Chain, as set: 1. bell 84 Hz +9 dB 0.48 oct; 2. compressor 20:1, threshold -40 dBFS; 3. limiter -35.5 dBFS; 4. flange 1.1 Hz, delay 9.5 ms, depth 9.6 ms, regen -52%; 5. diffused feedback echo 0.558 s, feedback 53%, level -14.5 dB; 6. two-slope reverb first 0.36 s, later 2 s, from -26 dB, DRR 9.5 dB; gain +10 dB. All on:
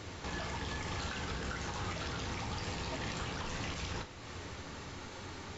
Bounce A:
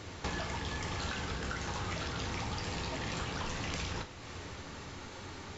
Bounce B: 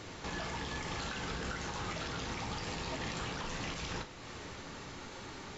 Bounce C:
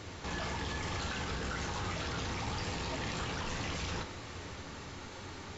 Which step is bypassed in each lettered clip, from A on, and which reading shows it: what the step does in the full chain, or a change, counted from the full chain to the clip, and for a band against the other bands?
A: 3, crest factor change +5.0 dB; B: 1, 125 Hz band -3.0 dB; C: 2, mean gain reduction 11.5 dB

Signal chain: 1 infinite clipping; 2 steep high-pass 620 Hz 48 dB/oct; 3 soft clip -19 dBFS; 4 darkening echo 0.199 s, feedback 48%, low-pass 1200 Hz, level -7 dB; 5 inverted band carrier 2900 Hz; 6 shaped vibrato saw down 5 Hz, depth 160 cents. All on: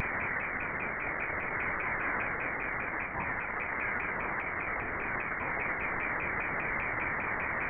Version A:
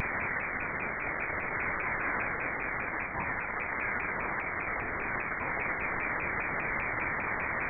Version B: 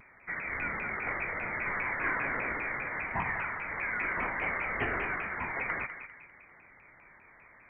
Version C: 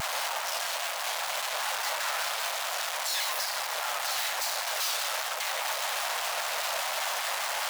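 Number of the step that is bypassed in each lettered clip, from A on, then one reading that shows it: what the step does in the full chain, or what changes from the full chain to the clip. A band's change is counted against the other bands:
3, distortion -23 dB; 1, crest factor change +4.5 dB; 5, loudness change +3.5 LU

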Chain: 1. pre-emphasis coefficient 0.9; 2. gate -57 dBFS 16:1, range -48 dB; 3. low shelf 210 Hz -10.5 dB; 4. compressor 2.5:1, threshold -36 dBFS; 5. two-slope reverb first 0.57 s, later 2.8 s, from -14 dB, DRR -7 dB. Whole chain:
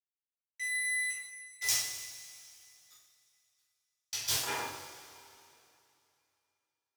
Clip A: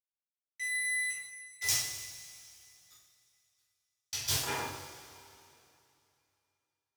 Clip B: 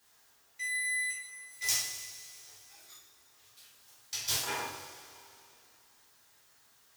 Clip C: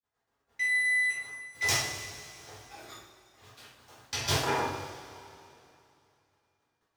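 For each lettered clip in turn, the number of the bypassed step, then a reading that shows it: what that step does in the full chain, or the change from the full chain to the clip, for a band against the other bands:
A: 3, 125 Hz band +7.5 dB; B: 2, momentary loudness spread change +3 LU; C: 1, 8 kHz band -12.0 dB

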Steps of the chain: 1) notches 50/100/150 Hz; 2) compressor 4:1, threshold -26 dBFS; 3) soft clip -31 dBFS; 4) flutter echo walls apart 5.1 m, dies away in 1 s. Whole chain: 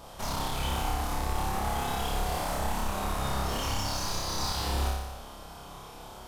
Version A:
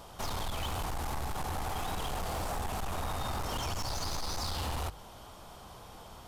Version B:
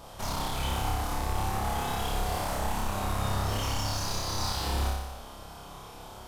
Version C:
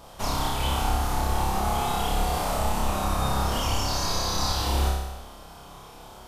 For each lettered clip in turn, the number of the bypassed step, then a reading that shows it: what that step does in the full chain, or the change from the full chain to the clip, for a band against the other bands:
4, echo-to-direct 3.0 dB to none; 1, 125 Hz band +2.0 dB; 3, distortion -10 dB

